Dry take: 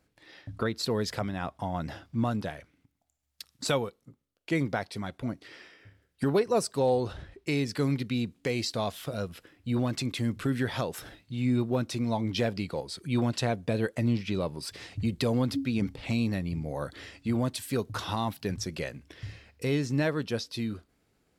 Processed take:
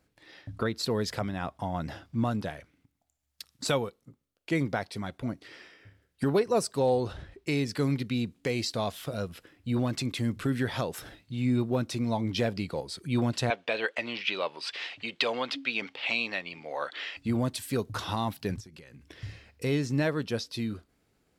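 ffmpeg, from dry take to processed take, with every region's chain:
ffmpeg -i in.wav -filter_complex "[0:a]asettb=1/sr,asplit=3[link_01][link_02][link_03];[link_01]atrim=end=13.504[link_04];[link_02]atrim=start=13.5:end=17.17,asetpts=PTS-STARTPTS,afade=type=in:duration=0.004:curve=qsin,afade=type=out:start_time=3.666:duration=0.004:curve=qsin,highpass=720,lowpass=4000,equalizer=frequency=2900:width_type=o:width=0.82:gain=7.5,acontrast=54[link_05];[link_03]atrim=start=17.166[link_06];[link_04][link_05]acrossfade=duration=0.004:curve1=hsin:curve2=qsin[link_07];[link_07][link_06]acrossfade=duration=0.004:curve1=qsin:curve2=hsin,asettb=1/sr,asplit=3[link_08][link_09][link_10];[link_08]atrim=end=18.604[link_11];[link_09]atrim=start=18.6:end=19.08,asetpts=PTS-STARTPTS,afade=type=in:duration=0.004:curve=qsin,afade=type=out:start_time=0.476:duration=0.004:curve=qsin,equalizer=frequency=640:width=4.4:gain=-13,acompressor=threshold=-45dB:ratio=12:attack=3.2:release=140:knee=1:detection=peak[link_12];[link_10]atrim=start=19.076[link_13];[link_11][link_12]acrossfade=duration=0.004:curve1=hsin:curve2=qsin[link_14];[link_14][link_13]acrossfade=duration=0.004:curve1=qsin:curve2=hsin" out.wav

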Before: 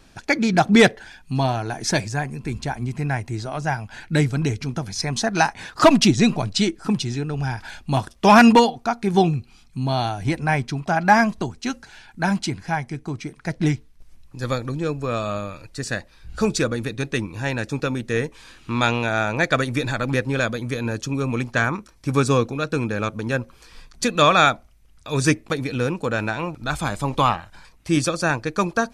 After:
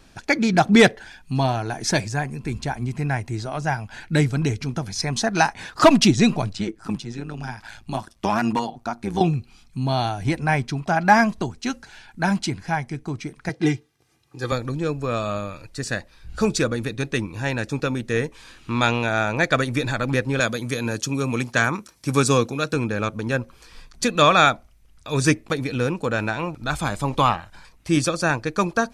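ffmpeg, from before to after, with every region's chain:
ffmpeg -i in.wav -filter_complex "[0:a]asettb=1/sr,asplit=3[link_01][link_02][link_03];[link_01]atrim=end=6.554[link_04];[link_02]atrim=start=6.55:end=9.21,asetpts=PTS-STARTPTS,afade=type=in:duration=0.004:curve=qsin,afade=type=out:start_time=2.656:duration=0.004:curve=qsin,equalizer=frequency=460:width_type=o:width=0.41:gain=-7.5,acrossover=split=170|2000|4700[link_05][link_06][link_07][link_08];[link_05]acompressor=threshold=-39dB:ratio=3[link_09];[link_06]acompressor=threshold=-18dB:ratio=3[link_10];[link_07]acompressor=threshold=-42dB:ratio=3[link_11];[link_08]acompressor=threshold=-43dB:ratio=3[link_12];[link_09][link_10][link_11][link_12]amix=inputs=4:normalize=0,tremolo=f=110:d=0.71[link_13];[link_03]atrim=start=9.206[link_14];[link_04][link_13]acrossfade=duration=0.004:curve1=hsin:curve2=qsin[link_15];[link_15][link_14]acrossfade=duration=0.004:curve1=qsin:curve2=hsin,asettb=1/sr,asplit=3[link_16][link_17][link_18];[link_16]atrim=end=13.494[link_19];[link_17]atrim=start=13.49:end=14.52,asetpts=PTS-STARTPTS,afade=type=in:duration=0.004:curve=qsin,afade=type=out:start_time=1.026:duration=0.004:curve=qsin,highpass=frequency=120:width=0.5412,highpass=frequency=120:width=1.3066,highshelf=frequency=8300:gain=-5,aecho=1:1:2.5:0.69,atrim=end_sample=45423[link_20];[link_18]atrim=start=14.516[link_21];[link_19][link_20]acrossfade=duration=0.004:curve1=hsin:curve2=qsin[link_22];[link_22][link_21]acrossfade=duration=0.004:curve1=qsin:curve2=hsin,asettb=1/sr,asplit=3[link_23][link_24][link_25];[link_23]atrim=end=20.404[link_26];[link_24]atrim=start=20.4:end=22.74,asetpts=PTS-STARTPTS,afade=type=in:duration=0.004:curve=qsin,afade=type=out:start_time=2.336:duration=0.004:curve=qsin,highpass=96,highshelf=frequency=4100:gain=8.5[link_27];[link_25]atrim=start=22.736[link_28];[link_26][link_27]acrossfade=duration=0.004:curve1=hsin:curve2=qsin[link_29];[link_29][link_28]acrossfade=duration=0.004:curve1=qsin:curve2=hsin" out.wav

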